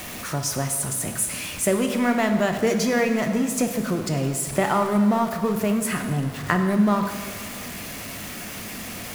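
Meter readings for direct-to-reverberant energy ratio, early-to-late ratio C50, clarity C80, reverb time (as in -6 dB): 5.0 dB, 7.0 dB, 8.0 dB, 1.8 s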